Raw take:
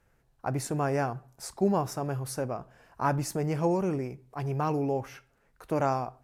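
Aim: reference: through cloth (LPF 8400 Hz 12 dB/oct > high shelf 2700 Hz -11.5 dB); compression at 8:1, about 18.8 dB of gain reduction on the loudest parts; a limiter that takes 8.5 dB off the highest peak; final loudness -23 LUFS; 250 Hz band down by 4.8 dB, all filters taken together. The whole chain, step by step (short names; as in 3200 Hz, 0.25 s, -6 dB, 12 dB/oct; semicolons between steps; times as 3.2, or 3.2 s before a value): bell 250 Hz -7.5 dB; compressor 8:1, threshold -43 dBFS; limiter -38 dBFS; LPF 8400 Hz 12 dB/oct; high shelf 2700 Hz -11.5 dB; gain +26.5 dB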